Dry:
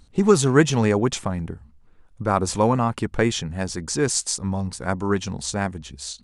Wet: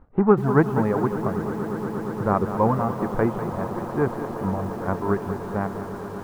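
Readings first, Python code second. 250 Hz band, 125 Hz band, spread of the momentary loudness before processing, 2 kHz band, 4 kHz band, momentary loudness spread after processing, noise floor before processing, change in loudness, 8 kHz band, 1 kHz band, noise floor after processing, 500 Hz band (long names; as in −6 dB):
−0.5 dB, −1.5 dB, 12 LU, −4.5 dB, below −20 dB, 9 LU, −53 dBFS, −2.0 dB, below −25 dB, +0.5 dB, −34 dBFS, −0.5 dB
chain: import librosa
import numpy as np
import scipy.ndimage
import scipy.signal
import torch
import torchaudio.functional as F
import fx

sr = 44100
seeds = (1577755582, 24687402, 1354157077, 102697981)

y = fx.envelope_flatten(x, sr, power=0.6)
y = fx.dereverb_blind(y, sr, rt60_s=1.8)
y = scipy.signal.sosfilt(scipy.signal.butter(4, 1300.0, 'lowpass', fs=sr, output='sos'), y)
y = fx.echo_swell(y, sr, ms=117, loudest=8, wet_db=-17.0)
y = fx.echo_crushed(y, sr, ms=197, feedback_pct=55, bits=7, wet_db=-10.5)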